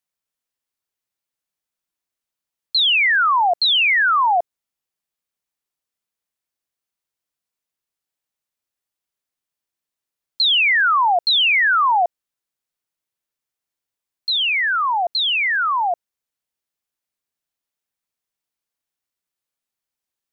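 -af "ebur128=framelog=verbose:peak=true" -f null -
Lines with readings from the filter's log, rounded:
Integrated loudness:
  I:         -15.8 LUFS
  Threshold: -26.0 LUFS
Loudness range:
  LRA:         7.5 LU
  Threshold: -39.2 LUFS
  LRA low:   -24.1 LUFS
  LRA high:  -16.6 LUFS
True peak:
  Peak:      -12.6 dBFS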